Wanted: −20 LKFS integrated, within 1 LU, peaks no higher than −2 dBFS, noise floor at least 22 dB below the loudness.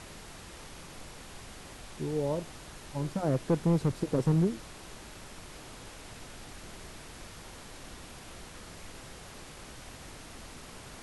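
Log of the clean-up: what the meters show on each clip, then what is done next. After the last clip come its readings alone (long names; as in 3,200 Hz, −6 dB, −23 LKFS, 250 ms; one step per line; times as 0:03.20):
share of clipped samples 0.4%; peaks flattened at −19.5 dBFS; background noise floor −48 dBFS; target noise floor −53 dBFS; integrated loudness −30.5 LKFS; sample peak −19.5 dBFS; target loudness −20.0 LKFS
→ clipped peaks rebuilt −19.5 dBFS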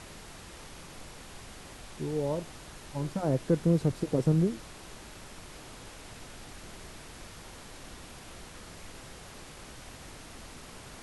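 share of clipped samples 0.0%; background noise floor −48 dBFS; target noise floor −52 dBFS
→ noise reduction from a noise print 6 dB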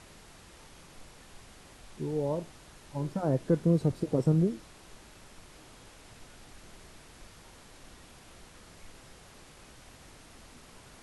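background noise floor −54 dBFS; integrated loudness −30.0 LKFS; sample peak −13.5 dBFS; target loudness −20.0 LKFS
→ level +10 dB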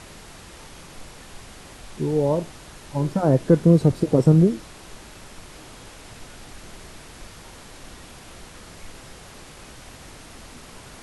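integrated loudness −20.0 LKFS; sample peak −3.5 dBFS; background noise floor −44 dBFS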